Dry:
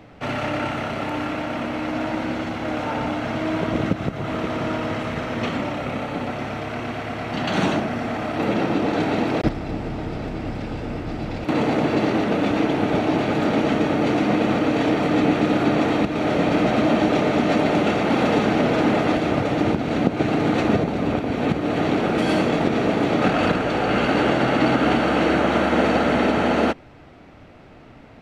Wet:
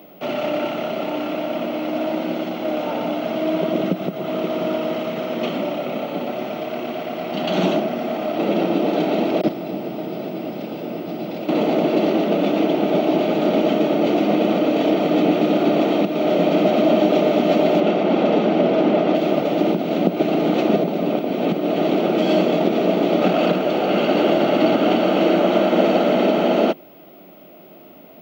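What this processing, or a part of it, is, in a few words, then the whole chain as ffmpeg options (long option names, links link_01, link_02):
old television with a line whistle: -filter_complex "[0:a]highpass=frequency=180:width=0.5412,highpass=frequency=180:width=1.3066,equalizer=frequency=180:width_type=q:width=4:gain=7,equalizer=frequency=360:width_type=q:width=4:gain=7,equalizer=frequency=620:width_type=q:width=4:gain=9,equalizer=frequency=1000:width_type=q:width=4:gain=-3,equalizer=frequency=1700:width_type=q:width=4:gain=-9,equalizer=frequency=3100:width_type=q:width=4:gain=5,lowpass=frequency=6600:width=0.5412,lowpass=frequency=6600:width=1.3066,aeval=exprs='val(0)+0.00447*sin(2*PI*15625*n/s)':channel_layout=same,asettb=1/sr,asplit=3[link_01][link_02][link_03];[link_01]atrim=end=17.804[link_04];[link_02]atrim=start=17.8:end=19.15,asetpts=PTS-STARTPTS,afade=type=in:duration=0.004:curve=qsin,afade=type=out:start_time=1.346:duration=0.004:curve=qsin,aemphasis=mode=reproduction:type=50kf[link_05];[link_03]atrim=start=19.146[link_06];[link_04][link_05]acrossfade=duration=0.004:curve1=hsin:curve2=qsin[link_07];[link_07][link_06]acrossfade=duration=0.004:curve1=qsin:curve2=hsin,volume=-1.5dB"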